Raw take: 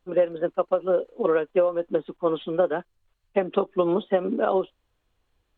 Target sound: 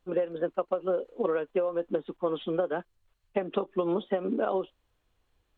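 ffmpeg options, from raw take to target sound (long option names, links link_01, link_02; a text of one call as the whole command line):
ffmpeg -i in.wav -af "acompressor=threshold=-23dB:ratio=6,volume=-1dB" out.wav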